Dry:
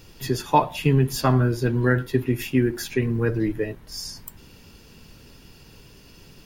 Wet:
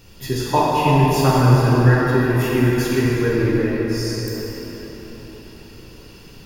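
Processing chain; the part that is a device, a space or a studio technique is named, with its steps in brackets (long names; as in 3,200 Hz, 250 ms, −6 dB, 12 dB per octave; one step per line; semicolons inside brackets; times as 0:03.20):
cathedral (convolution reverb RT60 4.8 s, pre-delay 10 ms, DRR −6.5 dB)
level −1 dB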